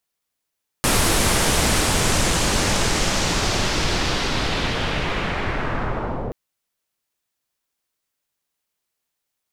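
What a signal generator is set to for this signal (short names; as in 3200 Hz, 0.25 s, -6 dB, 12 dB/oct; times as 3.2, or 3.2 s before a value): swept filtered noise pink, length 5.48 s lowpass, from 11000 Hz, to 510 Hz, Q 1.3, linear, gain ramp -6.5 dB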